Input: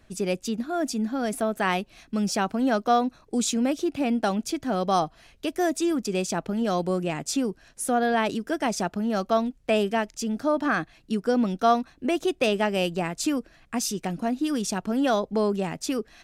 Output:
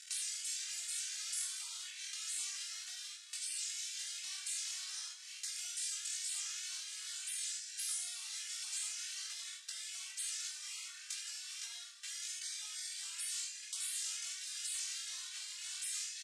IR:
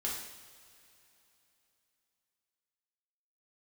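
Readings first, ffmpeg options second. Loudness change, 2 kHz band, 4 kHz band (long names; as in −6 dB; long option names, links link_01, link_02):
−13.5 dB, −16.5 dB, −5.0 dB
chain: -filter_complex "[0:a]aeval=exprs='if(lt(val(0),0),0.708*val(0),val(0))':channel_layout=same,acrusher=bits=7:dc=4:mix=0:aa=0.000001,aecho=1:1:45|75:0.631|0.562,acompressor=threshold=-38dB:ratio=16,asuperpass=centerf=3900:order=8:qfactor=0.56,asplit=2[link_01][link_02];[link_02]adelay=20,volume=-4.5dB[link_03];[link_01][link_03]amix=inputs=2:normalize=0,asplit=2[link_04][link_05];[1:a]atrim=start_sample=2205[link_06];[link_05][link_06]afir=irnorm=-1:irlink=0,volume=-3.5dB[link_07];[link_04][link_07]amix=inputs=2:normalize=0,afftfilt=real='re*lt(hypot(re,im),0.00794)':imag='im*lt(hypot(re,im),0.00794)':win_size=1024:overlap=0.75,aderivative,asplit=2[link_08][link_09];[link_09]adelay=2.3,afreqshift=2.1[link_10];[link_08][link_10]amix=inputs=2:normalize=1,volume=16.5dB"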